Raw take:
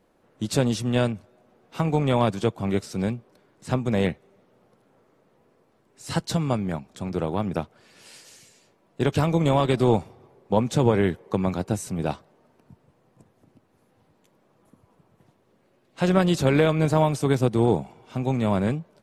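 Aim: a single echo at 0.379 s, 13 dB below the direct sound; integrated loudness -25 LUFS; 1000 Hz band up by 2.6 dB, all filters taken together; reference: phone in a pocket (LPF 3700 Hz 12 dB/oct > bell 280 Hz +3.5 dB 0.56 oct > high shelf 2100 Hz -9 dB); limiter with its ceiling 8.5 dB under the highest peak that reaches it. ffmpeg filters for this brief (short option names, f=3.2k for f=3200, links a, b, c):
-af "equalizer=f=1k:t=o:g=5,alimiter=limit=-12.5dB:level=0:latency=1,lowpass=3.7k,equalizer=f=280:t=o:w=0.56:g=3.5,highshelf=f=2.1k:g=-9,aecho=1:1:379:0.224,volume=0.5dB"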